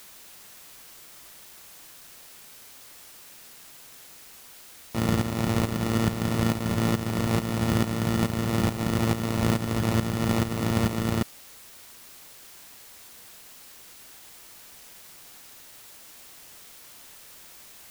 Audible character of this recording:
aliases and images of a low sample rate 1,600 Hz, jitter 0%
tremolo saw up 2.3 Hz, depth 70%
a quantiser's noise floor 8 bits, dither triangular

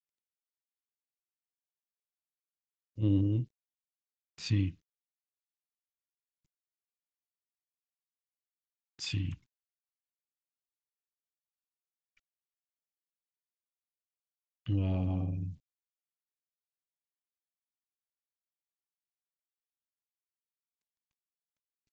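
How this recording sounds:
a quantiser's noise floor 12 bits, dither none
phaser sweep stages 2, 0.41 Hz, lowest notch 540–1,500 Hz
SBC

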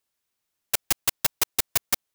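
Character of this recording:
background noise floor −81 dBFS
spectral slope 0.0 dB per octave

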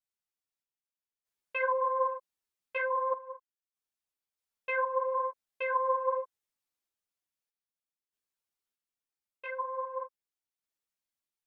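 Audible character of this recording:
sample-and-hold tremolo 1.6 Hz, depth 80%
a shimmering, thickened sound

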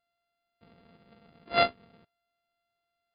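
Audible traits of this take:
a buzz of ramps at a fixed pitch in blocks of 64 samples
MP3

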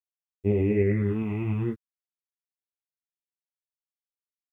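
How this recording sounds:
phaser sweep stages 6, 0.54 Hz, lowest notch 460–1,600 Hz
tremolo saw up 9.8 Hz, depth 30%
a quantiser's noise floor 12 bits, dither none
a shimmering, thickened sound

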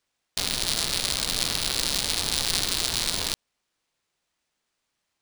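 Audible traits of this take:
aliases and images of a low sample rate 14,000 Hz, jitter 0%

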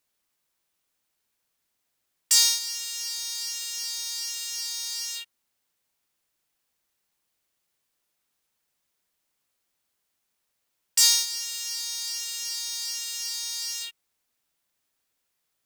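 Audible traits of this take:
background noise floor −78 dBFS
spectral slope +3.5 dB per octave

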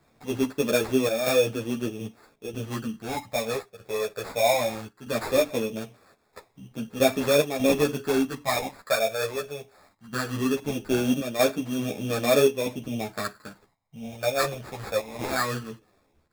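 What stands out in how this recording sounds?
chopped level 0.79 Hz, depth 60%, duty 85%
phaser sweep stages 6, 0.19 Hz, lowest notch 270–4,100 Hz
aliases and images of a low sample rate 3,000 Hz, jitter 0%
a shimmering, thickened sound

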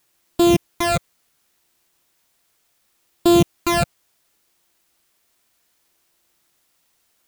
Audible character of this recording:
a buzz of ramps at a fixed pitch in blocks of 128 samples
phaser sweep stages 12, 0.69 Hz, lowest notch 260–2,000 Hz
a quantiser's noise floor 12 bits, dither triangular

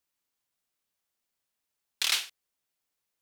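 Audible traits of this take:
background noise floor −85 dBFS
spectral slope +2.5 dB per octave

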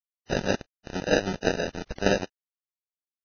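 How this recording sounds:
aliases and images of a low sample rate 1,100 Hz, jitter 0%
chopped level 6.3 Hz, depth 60%, duty 50%
a quantiser's noise floor 6 bits, dither none
Ogg Vorbis

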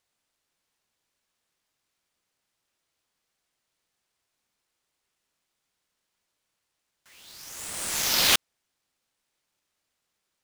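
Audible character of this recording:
aliases and images of a low sample rate 18,000 Hz, jitter 0%

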